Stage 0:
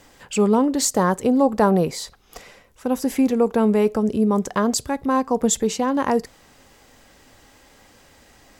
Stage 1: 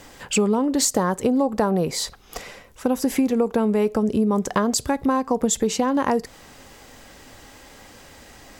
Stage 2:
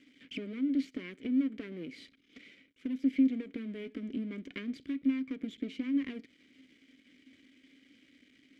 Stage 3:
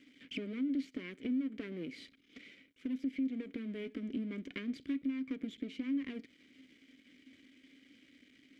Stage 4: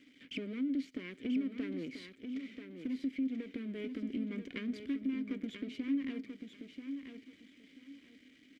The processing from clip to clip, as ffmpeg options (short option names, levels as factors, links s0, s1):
-af "acompressor=threshold=0.0708:ratio=6,volume=2"
-filter_complex "[0:a]acrossover=split=4600[s0][s1];[s1]acompressor=threshold=0.00708:ratio=4:attack=1:release=60[s2];[s0][s2]amix=inputs=2:normalize=0,aeval=exprs='max(val(0),0)':c=same,asplit=3[s3][s4][s5];[s3]bandpass=f=270:t=q:w=8,volume=1[s6];[s4]bandpass=f=2290:t=q:w=8,volume=0.501[s7];[s5]bandpass=f=3010:t=q:w=8,volume=0.355[s8];[s6][s7][s8]amix=inputs=3:normalize=0,volume=1.19"
-af "alimiter=level_in=1.58:limit=0.0631:level=0:latency=1:release=230,volume=0.631"
-af "aecho=1:1:986|1972|2958:0.422|0.0928|0.0204"